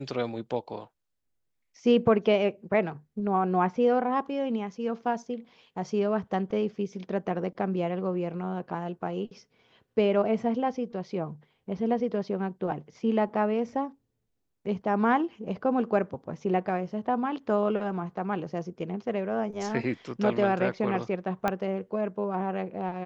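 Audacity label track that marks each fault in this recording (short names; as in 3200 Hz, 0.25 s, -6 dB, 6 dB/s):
21.480000	21.480000	pop -13 dBFS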